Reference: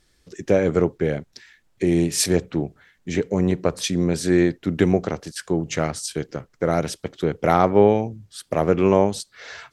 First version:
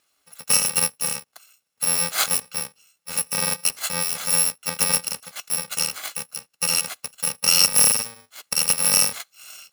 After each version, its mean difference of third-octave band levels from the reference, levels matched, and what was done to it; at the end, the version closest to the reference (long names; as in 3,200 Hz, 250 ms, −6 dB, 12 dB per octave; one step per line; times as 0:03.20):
16.0 dB: samples in bit-reversed order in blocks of 128 samples
meter weighting curve A
in parallel at −4.5 dB: dead-zone distortion −31 dBFS
on the sum: level −1 dB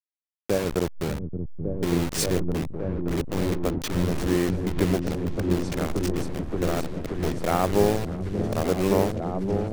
11.5 dB: hold until the input has moved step −18.5 dBFS
on a send: echo whose low-pass opens from repeat to repeat 575 ms, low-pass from 200 Hz, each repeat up 1 octave, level 0 dB
on the sum: background raised ahead of every attack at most 140 dB per second
level −6 dB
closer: second